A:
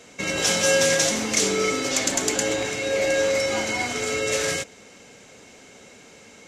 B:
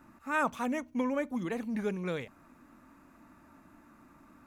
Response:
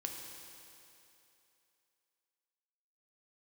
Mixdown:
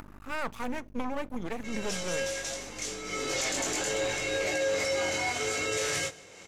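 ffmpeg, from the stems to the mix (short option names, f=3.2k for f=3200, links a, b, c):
-filter_complex "[0:a]equalizer=f=230:w=4.6:g=-14,flanger=delay=19:depth=3.1:speed=0.69,adelay=1450,volume=-0.5dB,afade=t=in:st=3.04:d=0.34:silence=0.281838,asplit=2[a][b];[b]volume=-22.5dB[c];[1:a]acompressor=mode=upward:threshold=-48dB:ratio=2.5,aeval=exprs='val(0)+0.00316*(sin(2*PI*50*n/s)+sin(2*PI*2*50*n/s)/2+sin(2*PI*3*50*n/s)/3+sin(2*PI*4*50*n/s)/4+sin(2*PI*5*50*n/s)/5)':c=same,aeval=exprs='max(val(0),0)':c=same,volume=3dB[d];[c]aecho=0:1:152:1[e];[a][d][e]amix=inputs=3:normalize=0,acompressor=mode=upward:threshold=-42dB:ratio=2.5,alimiter=limit=-21dB:level=0:latency=1:release=13"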